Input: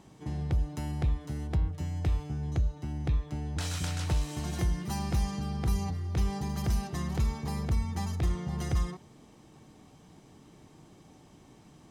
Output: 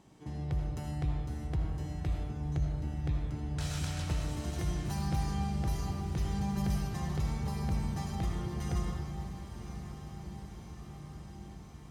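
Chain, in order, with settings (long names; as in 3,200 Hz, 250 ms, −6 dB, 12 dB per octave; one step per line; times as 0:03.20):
feedback delay with all-pass diffusion 1,025 ms, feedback 70%, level −11 dB
comb and all-pass reverb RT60 1.5 s, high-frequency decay 0.45×, pre-delay 40 ms, DRR 1.5 dB
level −5.5 dB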